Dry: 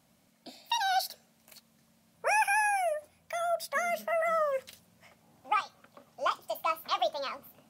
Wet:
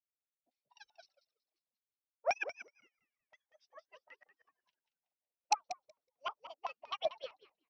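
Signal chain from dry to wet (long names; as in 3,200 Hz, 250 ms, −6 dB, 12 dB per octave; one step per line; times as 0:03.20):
harmonic-percussive split with one part muted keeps percussive
auto-filter low-pass square 3.9 Hz 810–2,800 Hz
in parallel at −5.5 dB: wrap-around overflow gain 13.5 dB
on the sum: transistor ladder low-pass 6,000 Hz, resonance 80%
on a send: echo with shifted repeats 186 ms, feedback 37%, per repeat −110 Hz, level −5 dB
on the sum: expander for the loud parts 2.5 to 1, over −53 dBFS
level +3.5 dB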